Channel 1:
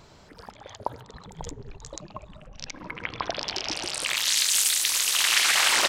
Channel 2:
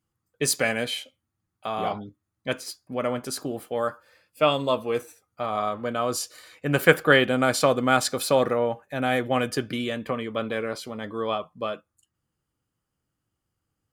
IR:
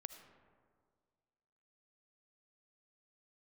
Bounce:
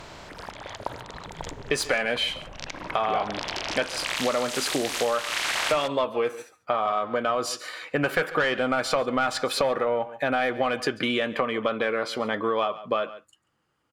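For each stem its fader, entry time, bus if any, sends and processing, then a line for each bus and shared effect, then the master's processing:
-3.0 dB, 0.00 s, no send, no echo send, spectral levelling over time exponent 0.6
+1.5 dB, 1.30 s, no send, echo send -21 dB, overdrive pedal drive 19 dB, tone 4.8 kHz, clips at -1.5 dBFS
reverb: none
echo: delay 140 ms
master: treble shelf 5 kHz -11.5 dB; compression, threshold -22 dBFS, peak gain reduction 14.5 dB

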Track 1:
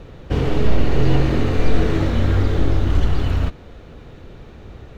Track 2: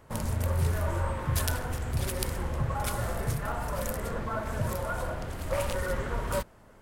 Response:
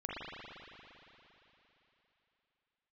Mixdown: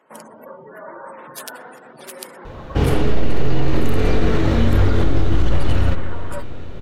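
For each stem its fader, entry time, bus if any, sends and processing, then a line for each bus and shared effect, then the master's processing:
+2.0 dB, 2.45 s, send -13 dB, none
-0.5 dB, 0.00 s, send -18.5 dB, spectral gate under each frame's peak -30 dB strong; Bessel high-pass 330 Hz, order 8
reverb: on, RT60 3.5 s, pre-delay 39 ms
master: peak limiter -5.5 dBFS, peak gain reduction 8.5 dB

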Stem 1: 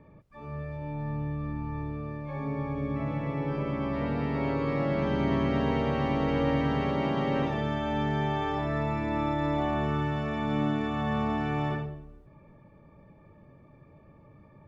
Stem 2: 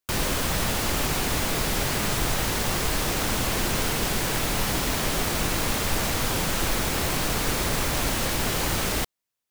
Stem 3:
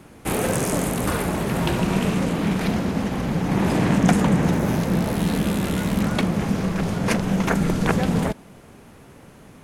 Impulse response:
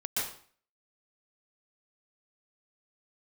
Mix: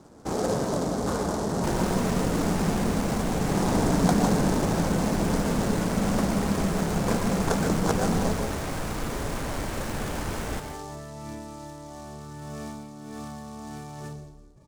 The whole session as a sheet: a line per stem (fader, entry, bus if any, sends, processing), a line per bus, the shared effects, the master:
-4.0 dB, 2.30 s, bus A, send -22 dB, compressor with a negative ratio -31 dBFS, ratio -0.5
+0.5 dB, 1.55 s, bus A, send -15 dB, treble shelf 5.2 kHz -8 dB
-3.0 dB, 0.00 s, no bus, send -7 dB, low-pass 1.2 kHz 12 dB/octave; bass shelf 320 Hz -7.5 dB
bus A: 0.0 dB, compression 1.5:1, threshold -42 dBFS, peak gain reduction 8 dB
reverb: on, RT60 0.50 s, pre-delay 115 ms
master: treble shelf 3.3 kHz -11 dB; delay time shaken by noise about 5.8 kHz, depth 0.052 ms

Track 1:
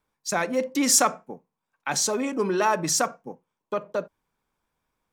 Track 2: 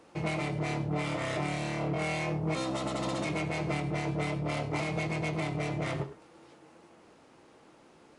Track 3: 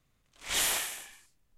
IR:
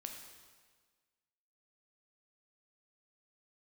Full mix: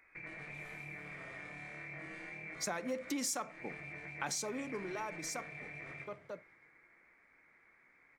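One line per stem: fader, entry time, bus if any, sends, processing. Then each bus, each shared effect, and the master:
4.32 s -5.5 dB -> 4.89 s -18 dB, 2.35 s, no bus, no send, no echo send, none
-9.0 dB, 0.00 s, bus A, send -11 dB, echo send -17.5 dB, none
-16.0 dB, 0.00 s, bus A, send -9.5 dB, no echo send, tilt EQ -2.5 dB/octave; peak limiter -26 dBFS, peak gain reduction 6 dB
bus A: 0.0 dB, frequency inversion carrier 2.5 kHz; compression 2.5:1, threshold -50 dBFS, peak gain reduction 9.5 dB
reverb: on, RT60 1.5 s, pre-delay 7 ms
echo: feedback delay 124 ms, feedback 36%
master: compression 6:1, threshold -35 dBFS, peak gain reduction 14.5 dB

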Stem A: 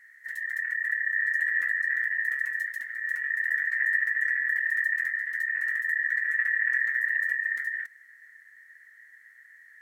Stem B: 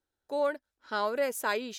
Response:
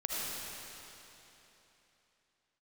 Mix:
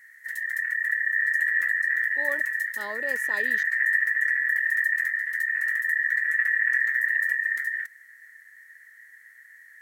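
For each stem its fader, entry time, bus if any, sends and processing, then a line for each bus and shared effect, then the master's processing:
+2.0 dB, 0.00 s, no send, treble shelf 6.7 kHz +9 dB
-6.0 dB, 1.85 s, no send, gate with hold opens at -43 dBFS; transient shaper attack -4 dB, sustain +3 dB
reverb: none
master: none

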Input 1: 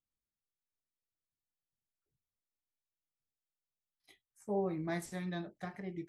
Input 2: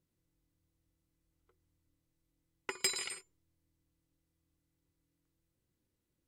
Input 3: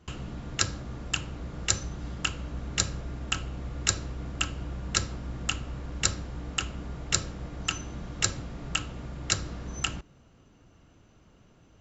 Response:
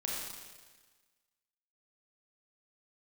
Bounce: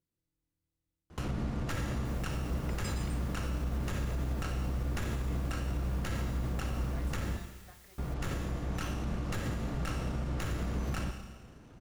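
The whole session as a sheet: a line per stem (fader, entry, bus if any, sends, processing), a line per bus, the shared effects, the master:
-10.5 dB, 2.05 s, no send, word length cut 8-bit, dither triangular; high-pass 570 Hz
-9.5 dB, 0.00 s, no send, none
+2.0 dB, 1.10 s, muted 7.37–7.98 s, send -13 dB, sliding maximum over 9 samples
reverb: on, RT60 1.4 s, pre-delay 28 ms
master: gain riding within 3 dB 2 s; peak limiter -25.5 dBFS, peak gain reduction 22 dB

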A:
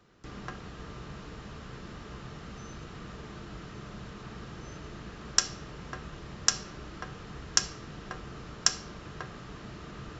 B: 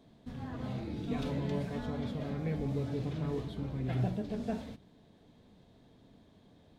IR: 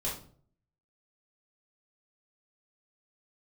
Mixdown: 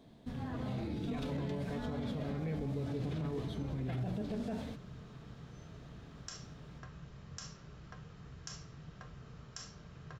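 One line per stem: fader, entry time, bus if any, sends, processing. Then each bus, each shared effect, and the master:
-15.0 dB, 0.90 s, send -10.5 dB, peaking EQ 130 Hz +9 dB 1.1 oct
+1.5 dB, 0.00 s, no send, none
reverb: on, RT60 0.50 s, pre-delay 4 ms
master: peak limiter -30 dBFS, peak gain reduction 11.5 dB

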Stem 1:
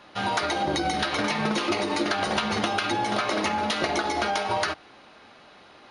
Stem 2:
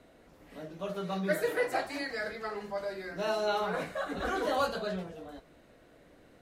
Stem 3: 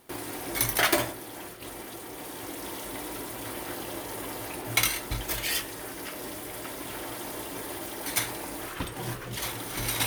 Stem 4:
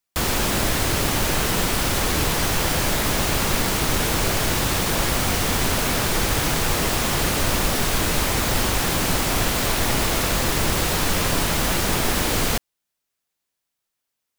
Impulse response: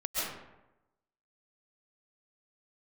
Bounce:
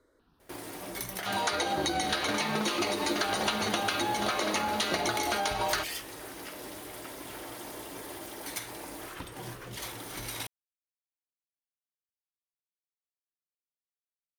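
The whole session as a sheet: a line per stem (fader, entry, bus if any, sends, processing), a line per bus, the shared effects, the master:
-4.5 dB, 1.10 s, no bus, no send, band-stop 5.2 kHz, Q 11
-5.0 dB, 0.00 s, bus A, no send, stepped phaser 5.1 Hz 720–4700 Hz
-4.0 dB, 0.40 s, bus A, no send, none
mute
bus A: 0.0 dB, treble shelf 5.5 kHz -10.5 dB; compression 10:1, threshold -36 dBFS, peak gain reduction 13 dB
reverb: none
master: tone controls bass -2 dB, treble +7 dB

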